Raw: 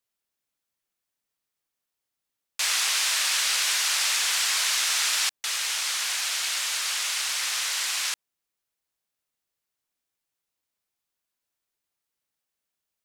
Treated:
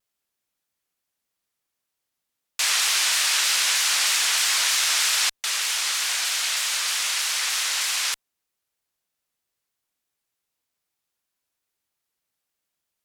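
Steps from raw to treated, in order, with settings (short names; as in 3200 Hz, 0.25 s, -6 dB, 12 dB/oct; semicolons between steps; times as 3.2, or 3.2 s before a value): added harmonics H 6 -44 dB, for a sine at -11 dBFS; shaped vibrato saw down 3.2 Hz, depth 100 cents; gain +3 dB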